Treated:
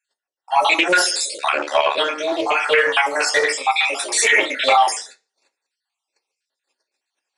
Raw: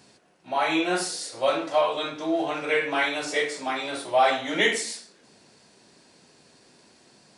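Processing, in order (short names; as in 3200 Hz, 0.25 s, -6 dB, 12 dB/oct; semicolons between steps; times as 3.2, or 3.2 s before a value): random spectral dropouts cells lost 51%; 4.12–4.88 reverse; gate -53 dBFS, range -36 dB; HPF 420 Hz 24 dB/oct; reverb RT60 0.30 s, pre-delay 3 ms, DRR 5.5 dB; 1.37–1.98 ring modulator 36 Hz; maximiser +19 dB; Doppler distortion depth 0.11 ms; gain -4.5 dB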